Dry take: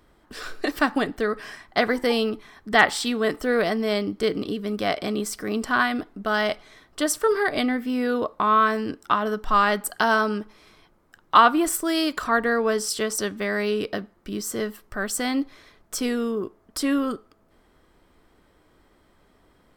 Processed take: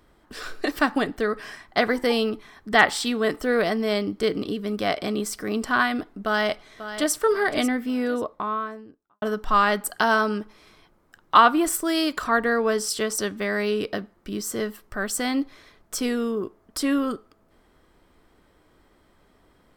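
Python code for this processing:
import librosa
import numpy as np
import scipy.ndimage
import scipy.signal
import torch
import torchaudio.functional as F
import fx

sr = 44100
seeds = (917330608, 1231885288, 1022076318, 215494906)

y = fx.echo_throw(x, sr, start_s=6.23, length_s=0.9, ms=540, feedback_pct=40, wet_db=-11.5)
y = fx.studio_fade_out(y, sr, start_s=7.76, length_s=1.46)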